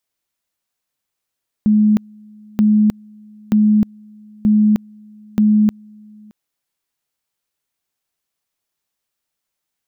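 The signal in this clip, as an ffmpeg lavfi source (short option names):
-f lavfi -i "aevalsrc='pow(10,(-9-29.5*gte(mod(t,0.93),0.31))/20)*sin(2*PI*212*t)':d=4.65:s=44100"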